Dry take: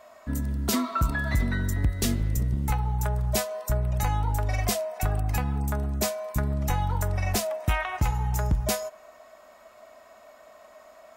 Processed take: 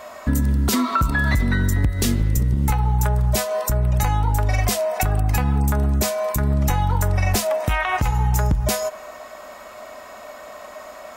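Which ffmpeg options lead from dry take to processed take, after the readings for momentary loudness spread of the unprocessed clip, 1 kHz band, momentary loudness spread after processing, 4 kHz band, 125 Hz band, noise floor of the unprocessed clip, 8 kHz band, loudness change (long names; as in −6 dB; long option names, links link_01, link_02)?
3 LU, +7.0 dB, 18 LU, +5.5 dB, +7.0 dB, −52 dBFS, +5.5 dB, +7.0 dB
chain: -af "bandreject=frequency=660:width=12,acompressor=threshold=-30dB:ratio=6,alimiter=level_in=23dB:limit=-1dB:release=50:level=0:latency=1,volume=-8.5dB"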